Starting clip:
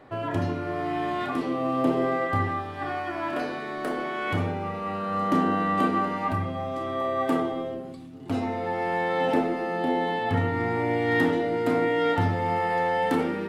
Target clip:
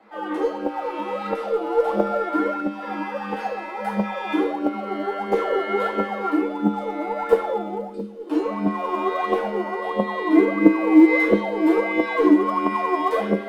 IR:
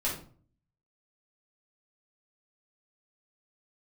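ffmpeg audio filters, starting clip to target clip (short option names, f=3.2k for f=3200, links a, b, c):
-filter_complex "[1:a]atrim=start_sample=2205,afade=t=out:st=0.15:d=0.01,atrim=end_sample=7056[a];[0:a][a]afir=irnorm=-1:irlink=0,asubboost=boost=3.5:cutoff=150,afreqshift=200,acrossover=split=110|1100|3400[b][c][d][e];[c]aphaser=in_gain=1:out_gain=1:delay=3.4:decay=0.79:speed=1.5:type=triangular[f];[b][f][d][e]amix=inputs=4:normalize=0,volume=-6.5dB"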